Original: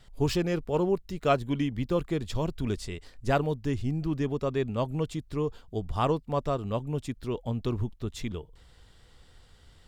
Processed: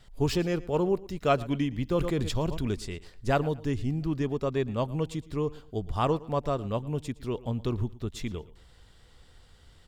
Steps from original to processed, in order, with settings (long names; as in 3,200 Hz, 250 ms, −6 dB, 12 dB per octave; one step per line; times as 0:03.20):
repeating echo 114 ms, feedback 30%, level −20 dB
0:01.97–0:02.67: level that may fall only so fast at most 38 dB per second